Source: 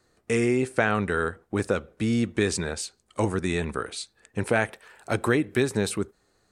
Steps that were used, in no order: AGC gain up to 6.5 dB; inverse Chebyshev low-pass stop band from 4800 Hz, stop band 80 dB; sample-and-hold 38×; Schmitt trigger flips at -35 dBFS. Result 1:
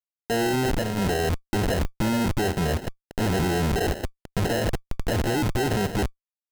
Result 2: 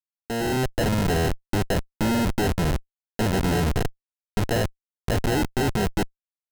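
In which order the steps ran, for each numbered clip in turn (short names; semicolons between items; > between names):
AGC > Schmitt trigger > inverse Chebyshev low-pass > sample-and-hold; inverse Chebyshev low-pass > sample-and-hold > Schmitt trigger > AGC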